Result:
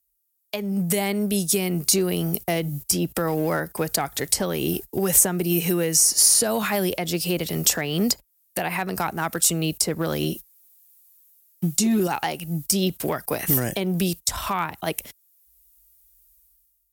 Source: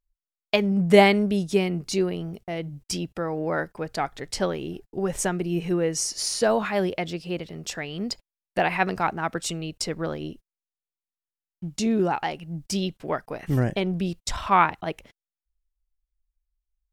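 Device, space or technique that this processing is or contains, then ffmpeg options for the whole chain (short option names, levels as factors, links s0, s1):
FM broadcast chain: -filter_complex "[0:a]asettb=1/sr,asplit=3[s0][s1][s2];[s0]atrim=end=10.234[s3];[s1]atrim=start=10.23:end=12.07,asetpts=PTS-STARTPTS,afade=t=in:d=0.004:c=qsin,afade=t=out:st=1.836:d=0.004:c=qsin,aecho=1:1:5.5:0.89,atrim=end_sample=81144[s4];[s2]atrim=start=12.066[s5];[s3][s4]acrossfade=d=0.004:c1=hsin:c2=qsin[s6];[s6][s5]acrossfade=d=0.004:c1=qsin:c2=hsin,highpass=f=40:w=0.5412,highpass=f=40:w=1.3066,dynaudnorm=f=150:g=7:m=5.96,acrossover=split=230|1700[s7][s8][s9];[s7]acompressor=threshold=0.0891:ratio=4[s10];[s8]acompressor=threshold=0.141:ratio=4[s11];[s9]acompressor=threshold=0.0282:ratio=4[s12];[s10][s11][s12]amix=inputs=3:normalize=0,aemphasis=mode=production:type=50fm,alimiter=limit=0.251:level=0:latency=1:release=256,asoftclip=type=hard:threshold=0.224,lowpass=f=15000:w=0.5412,lowpass=f=15000:w=1.3066,aemphasis=mode=production:type=50fm,volume=0.841"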